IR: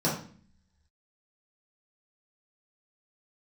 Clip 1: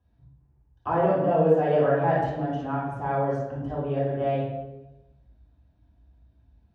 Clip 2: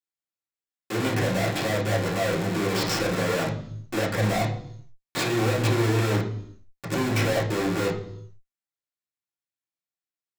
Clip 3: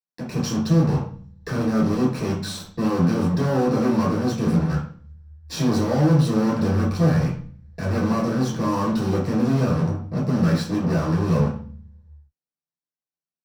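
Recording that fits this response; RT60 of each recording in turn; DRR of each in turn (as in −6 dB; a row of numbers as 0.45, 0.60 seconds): 3; 1.0, 0.70, 0.45 seconds; −9.0, −5.0, −7.5 decibels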